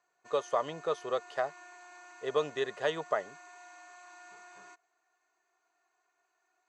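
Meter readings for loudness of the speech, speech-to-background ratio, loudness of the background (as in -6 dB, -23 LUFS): -34.0 LUFS, 18.0 dB, -52.0 LUFS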